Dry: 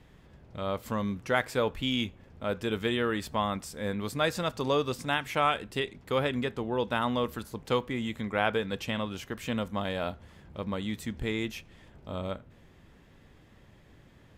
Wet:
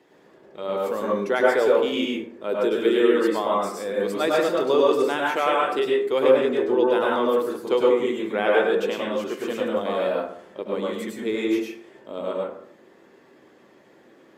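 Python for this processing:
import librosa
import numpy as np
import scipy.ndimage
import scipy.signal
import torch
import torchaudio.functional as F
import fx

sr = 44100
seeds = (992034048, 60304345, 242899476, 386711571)

y = fx.spec_quant(x, sr, step_db=15)
y = fx.highpass_res(y, sr, hz=370.0, q=3.7)
y = fx.rev_plate(y, sr, seeds[0], rt60_s=0.61, hf_ratio=0.45, predelay_ms=90, drr_db=-3.5)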